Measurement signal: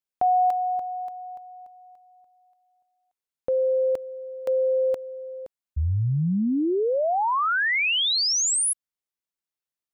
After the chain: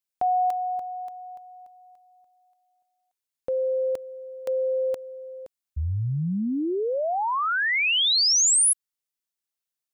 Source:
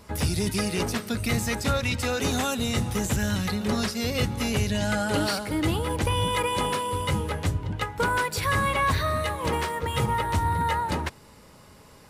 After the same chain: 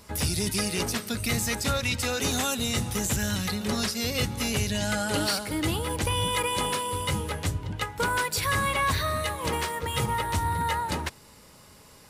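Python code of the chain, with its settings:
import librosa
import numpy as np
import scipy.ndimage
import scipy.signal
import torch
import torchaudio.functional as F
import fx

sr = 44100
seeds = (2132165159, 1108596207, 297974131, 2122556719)

y = fx.high_shelf(x, sr, hz=2800.0, db=7.5)
y = F.gain(torch.from_numpy(y), -3.0).numpy()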